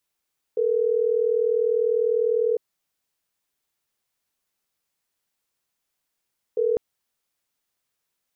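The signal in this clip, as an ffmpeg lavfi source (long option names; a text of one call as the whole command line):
ffmpeg -f lavfi -i "aevalsrc='0.0841*(sin(2*PI*440*t)+sin(2*PI*480*t))*clip(min(mod(t,6),2-mod(t,6))/0.005,0,1)':duration=6.2:sample_rate=44100" out.wav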